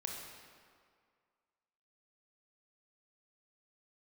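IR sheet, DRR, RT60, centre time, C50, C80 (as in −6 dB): 0.0 dB, 2.1 s, 78 ms, 1.5 dB, 3.5 dB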